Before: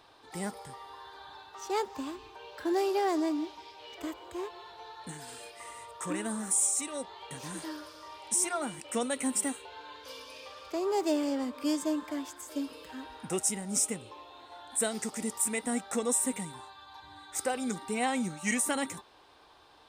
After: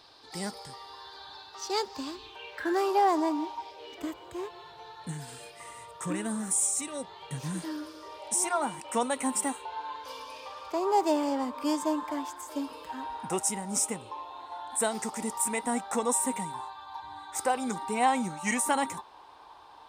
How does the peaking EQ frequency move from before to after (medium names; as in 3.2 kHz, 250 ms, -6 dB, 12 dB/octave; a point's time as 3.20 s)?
peaking EQ +12.5 dB 0.66 oct
2.13 s 4.7 kHz
2.96 s 930 Hz
3.59 s 930 Hz
4.15 s 140 Hz
7.44 s 140 Hz
8.51 s 930 Hz